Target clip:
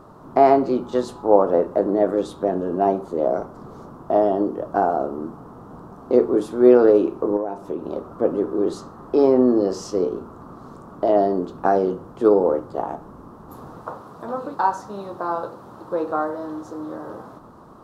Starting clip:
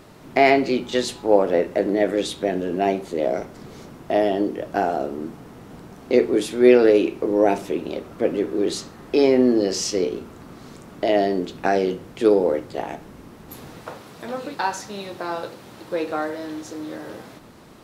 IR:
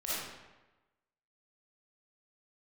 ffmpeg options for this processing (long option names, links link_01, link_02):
-filter_complex "[0:a]highshelf=frequency=1600:width_type=q:width=3:gain=-11,asettb=1/sr,asplit=3[link_01][link_02][link_03];[link_01]atrim=end=7.364[link_04];[link_02]atrim=start=7.36:end=7.92,asetpts=PTS-STARTPTS,afade=type=in:duration=0.004:curve=qsin,afade=type=out:start_time=0.556:duration=0.004:curve=qsin,acompressor=threshold=-22dB:ratio=16[link_05];[link_03]atrim=start=7.916[link_06];[link_04][link_05]acrossfade=duration=0.004:curve1=hsin:curve2=qsin[link_07];[link_07][link_06]acrossfade=duration=0.004:curve1=qsin:curve2=hsin"